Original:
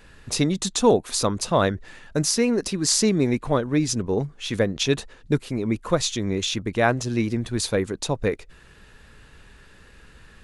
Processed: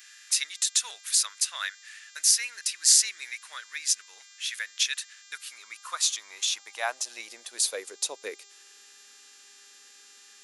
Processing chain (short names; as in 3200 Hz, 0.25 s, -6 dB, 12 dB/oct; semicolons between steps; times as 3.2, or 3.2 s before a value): buzz 400 Hz, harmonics 19, -52 dBFS -2 dB/oct; high-pass sweep 1700 Hz -> 270 Hz, 5.13–8.97; differentiator; gain +3.5 dB